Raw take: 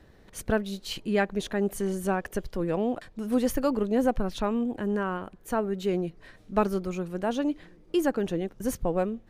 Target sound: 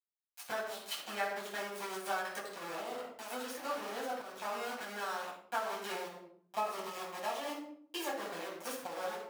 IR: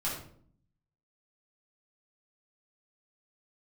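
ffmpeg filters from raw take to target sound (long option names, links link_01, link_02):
-filter_complex "[0:a]aeval=exprs='val(0)*gte(abs(val(0)),0.0335)':channel_layout=same,asettb=1/sr,asplit=3[link_01][link_02][link_03];[link_01]atrim=end=5.964[link_04];[link_02]atrim=start=5.96:end=8.14,asetpts=PTS-STARTPTS,afade=type=in:duration=0.004:curve=qsin,afade=type=out:start_time=2.176:duration=0.004:curve=qsin,bandreject=frequency=1500:width=5.1[link_05];[link_03]atrim=start=8.136[link_06];[link_04][link_05]acrossfade=duration=0.004:curve1=hsin:curve2=qsin[link_07];[link_07][link_06]acrossfade=duration=0.004:curve1=qsin:curve2=hsin[link_08];[1:a]atrim=start_sample=2205[link_09];[link_08][link_09]afir=irnorm=-1:irlink=0,acompressor=threshold=-21dB:ratio=12,highpass=720,volume=-4.5dB"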